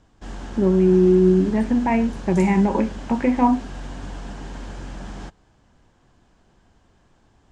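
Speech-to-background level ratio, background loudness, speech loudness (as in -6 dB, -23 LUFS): 17.0 dB, -36.0 LUFS, -19.0 LUFS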